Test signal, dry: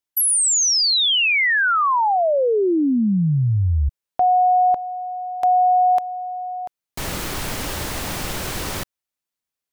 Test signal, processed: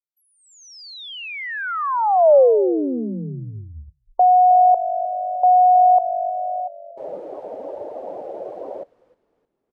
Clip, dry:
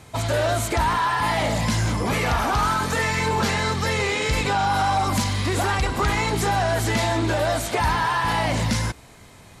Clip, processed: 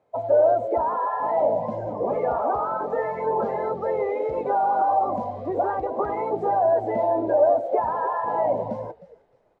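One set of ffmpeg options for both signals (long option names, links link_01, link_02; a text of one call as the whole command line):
ffmpeg -i in.wav -filter_complex "[0:a]bandpass=frequency=570:width_type=q:width=2.7:csg=0,asplit=5[link_01][link_02][link_03][link_04][link_05];[link_02]adelay=309,afreqshift=-49,volume=-14.5dB[link_06];[link_03]adelay=618,afreqshift=-98,volume=-21.8dB[link_07];[link_04]adelay=927,afreqshift=-147,volume=-29.2dB[link_08];[link_05]adelay=1236,afreqshift=-196,volume=-36.5dB[link_09];[link_01][link_06][link_07][link_08][link_09]amix=inputs=5:normalize=0,afftdn=noise_reduction=18:noise_floor=-34,volume=7.5dB" out.wav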